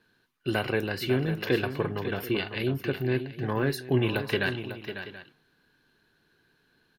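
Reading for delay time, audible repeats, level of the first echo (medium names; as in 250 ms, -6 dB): 548 ms, 2, -10.0 dB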